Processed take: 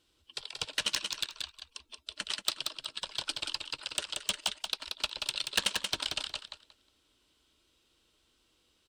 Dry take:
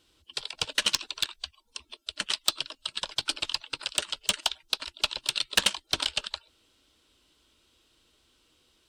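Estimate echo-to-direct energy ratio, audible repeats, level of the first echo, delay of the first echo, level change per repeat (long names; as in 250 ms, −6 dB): −5.0 dB, 3, −5.0 dB, 181 ms, −14.5 dB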